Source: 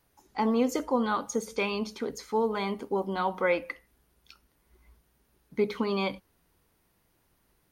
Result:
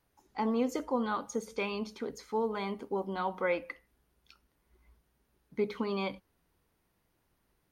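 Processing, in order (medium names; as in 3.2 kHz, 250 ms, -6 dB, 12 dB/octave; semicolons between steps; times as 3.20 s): treble shelf 4.9 kHz -4.5 dB; trim -4.5 dB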